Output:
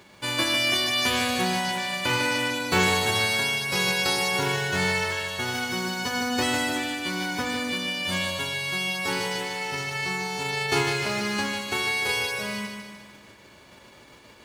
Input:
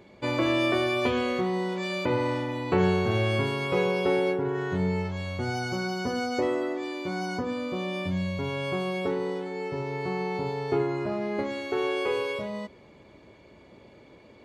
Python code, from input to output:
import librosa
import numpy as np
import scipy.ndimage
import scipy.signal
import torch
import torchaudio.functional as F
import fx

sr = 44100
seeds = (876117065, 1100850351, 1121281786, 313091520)

y = fx.envelope_flatten(x, sr, power=0.3)
y = fx.lowpass(y, sr, hz=2700.0, slope=6)
y = fx.echo_feedback(y, sr, ms=150, feedback_pct=53, wet_db=-6)
y = y * librosa.db_to_amplitude(3.0)